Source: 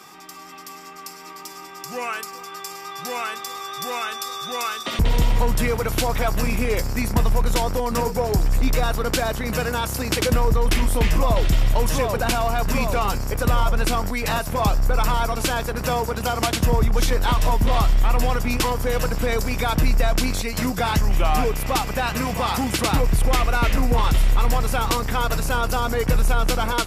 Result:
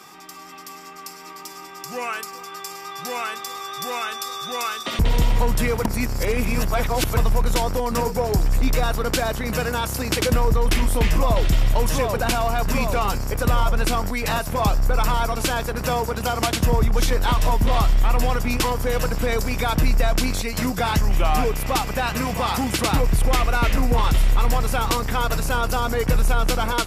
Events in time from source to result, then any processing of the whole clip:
5.85–7.17 s: reverse

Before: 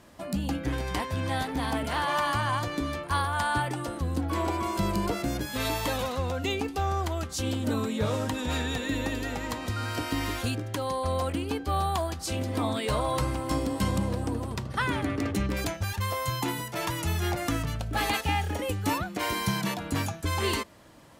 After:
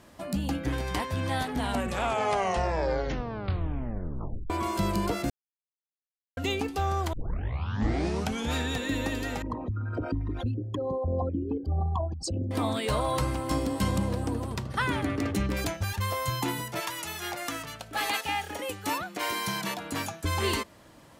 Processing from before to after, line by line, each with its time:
1.39 s: tape stop 3.11 s
5.30–6.37 s: mute
7.13 s: tape start 1.42 s
9.42–12.51 s: resonances exaggerated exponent 3
16.79–20.23 s: high-pass 1 kHz -> 290 Hz 6 dB/octave

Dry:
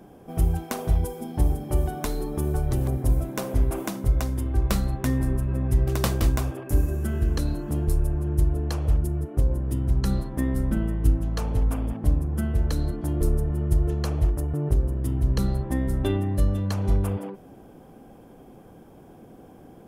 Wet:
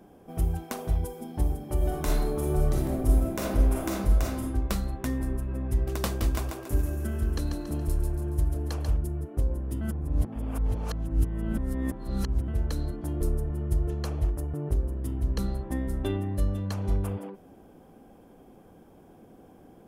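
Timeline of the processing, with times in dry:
1.77–4.42 s: reverb throw, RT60 0.81 s, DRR -3.5 dB
6.17–8.90 s: thinning echo 140 ms, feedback 46%, high-pass 340 Hz, level -5 dB
9.81–12.48 s: reverse
whole clip: peaking EQ 130 Hz -8 dB 0.22 oct; trim -4.5 dB

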